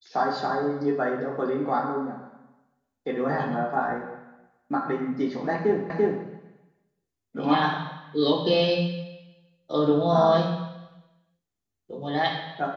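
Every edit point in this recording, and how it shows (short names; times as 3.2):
5.9 repeat of the last 0.34 s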